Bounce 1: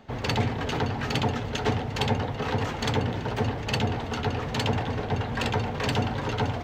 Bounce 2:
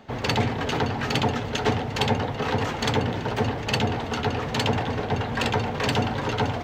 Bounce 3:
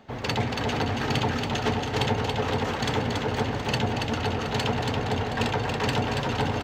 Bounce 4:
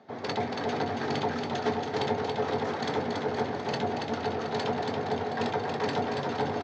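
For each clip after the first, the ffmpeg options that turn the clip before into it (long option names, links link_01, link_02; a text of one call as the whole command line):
ffmpeg -i in.wav -af "lowshelf=frequency=92:gain=-7,volume=3.5dB" out.wav
ffmpeg -i in.wav -af "aecho=1:1:280|518|720.3|892.3|1038:0.631|0.398|0.251|0.158|0.1,volume=-3.5dB" out.wav
ffmpeg -i in.wav -filter_complex "[0:a]highpass=frequency=110:width=0.5412,highpass=frequency=110:width=1.3066,equalizer=frequency=120:width_type=q:width=4:gain=-8,equalizer=frequency=400:width_type=q:width=4:gain=5,equalizer=frequency=700:width_type=q:width=4:gain=5,equalizer=frequency=2800:width_type=q:width=4:gain=-9,lowpass=frequency=6000:width=0.5412,lowpass=frequency=6000:width=1.3066,asplit=2[link_01][link_02];[link_02]adelay=21,volume=-12.5dB[link_03];[link_01][link_03]amix=inputs=2:normalize=0,volume=-4.5dB" out.wav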